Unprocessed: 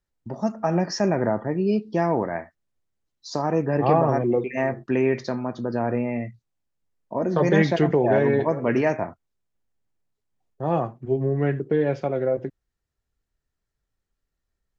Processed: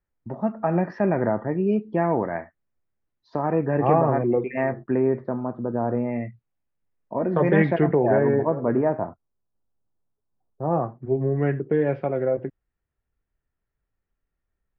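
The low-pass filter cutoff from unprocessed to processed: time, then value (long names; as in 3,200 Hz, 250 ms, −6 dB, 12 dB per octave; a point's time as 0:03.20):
low-pass filter 24 dB per octave
0:04.63 2,400 Hz
0:05.12 1,300 Hz
0:05.87 1,300 Hz
0:06.27 2,600 Hz
0:07.59 2,600 Hz
0:08.66 1,300 Hz
0:10.63 1,300 Hz
0:11.32 2,600 Hz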